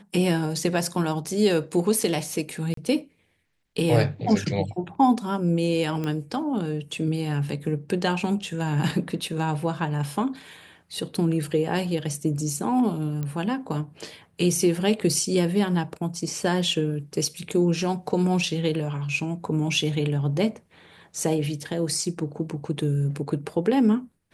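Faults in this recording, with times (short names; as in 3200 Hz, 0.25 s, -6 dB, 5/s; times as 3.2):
2.74–2.77 gap 33 ms
6.04 pop -17 dBFS
13.23 pop -18 dBFS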